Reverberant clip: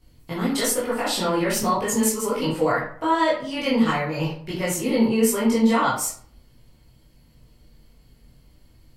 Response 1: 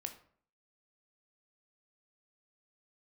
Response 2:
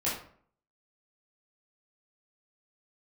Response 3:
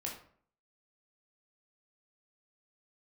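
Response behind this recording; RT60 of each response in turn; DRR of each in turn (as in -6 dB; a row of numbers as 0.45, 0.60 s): 2; 0.55, 0.55, 0.55 s; 5.5, -9.0, -2.0 dB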